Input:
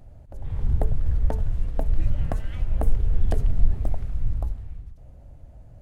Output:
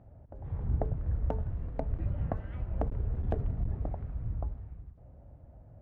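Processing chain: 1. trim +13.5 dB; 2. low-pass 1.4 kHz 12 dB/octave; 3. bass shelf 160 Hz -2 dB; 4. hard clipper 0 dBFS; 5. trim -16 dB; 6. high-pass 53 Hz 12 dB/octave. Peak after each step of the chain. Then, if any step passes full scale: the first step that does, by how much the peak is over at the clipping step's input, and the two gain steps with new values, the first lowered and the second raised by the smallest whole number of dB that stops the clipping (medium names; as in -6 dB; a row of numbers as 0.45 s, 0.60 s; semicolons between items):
+8.0 dBFS, +8.0 dBFS, +6.0 dBFS, 0.0 dBFS, -16.0 dBFS, -15.0 dBFS; step 1, 6.0 dB; step 1 +7.5 dB, step 5 -10 dB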